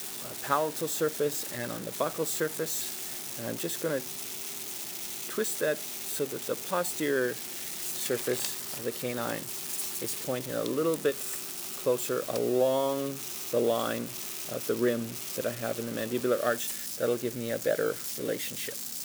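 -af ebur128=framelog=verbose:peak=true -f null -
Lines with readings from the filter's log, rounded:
Integrated loudness:
  I:         -30.8 LUFS
  Threshold: -40.8 LUFS
Loudness range:
  LRA:         2.8 LU
  Threshold: -50.8 LUFS
  LRA low:   -32.2 LUFS
  LRA high:  -29.5 LUFS
True peak:
  Peak:      -11.3 dBFS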